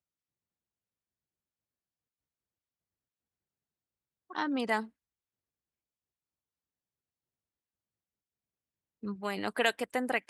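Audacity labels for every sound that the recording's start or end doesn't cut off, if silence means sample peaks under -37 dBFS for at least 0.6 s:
4.310000	4.830000	sound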